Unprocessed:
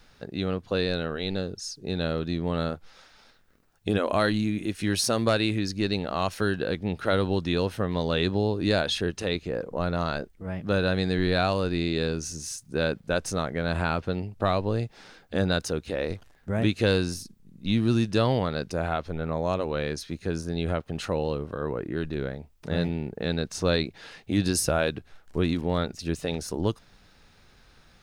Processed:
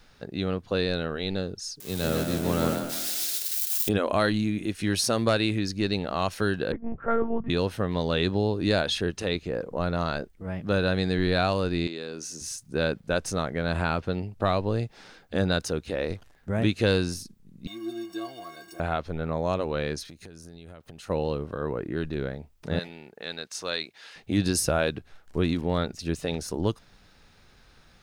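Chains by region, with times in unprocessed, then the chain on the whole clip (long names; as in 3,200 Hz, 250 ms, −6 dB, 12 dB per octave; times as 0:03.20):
0:01.80–0:03.89: spike at every zero crossing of −21 dBFS + echo with shifted repeats 152 ms, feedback 58%, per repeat +37 Hz, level −4.5 dB + multiband upward and downward expander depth 70%
0:06.72–0:07.50: low-pass filter 1,600 Hz 24 dB per octave + one-pitch LPC vocoder at 8 kHz 230 Hz + multiband upward and downward expander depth 40%
0:11.87–0:12.41: high-pass filter 250 Hz + downward compressor 3 to 1, threshold −33 dBFS
0:17.67–0:18.80: converter with a step at zero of −27 dBFS + high-pass filter 170 Hz + stiff-string resonator 330 Hz, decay 0.24 s, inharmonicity 0.03
0:20.05–0:21.10: high-shelf EQ 6,300 Hz +11.5 dB + downward compressor 16 to 1, threshold −41 dBFS
0:22.79–0:24.16: high-pass filter 1,400 Hz 6 dB per octave + upward compression, threshold −53 dBFS
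whole clip: no processing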